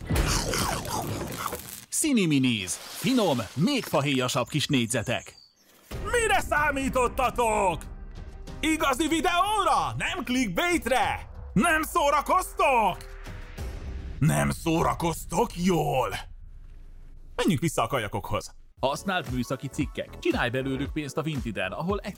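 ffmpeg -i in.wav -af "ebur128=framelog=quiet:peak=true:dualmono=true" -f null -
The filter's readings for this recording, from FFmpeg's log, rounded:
Integrated loudness:
  I:         -23.1 LUFS
  Threshold: -33.8 LUFS
Loudness range:
  LRA:         4.7 LU
  Threshold: -43.7 LUFS
  LRA low:   -26.6 LUFS
  LRA high:  -21.8 LUFS
True peak:
  Peak:      -11.0 dBFS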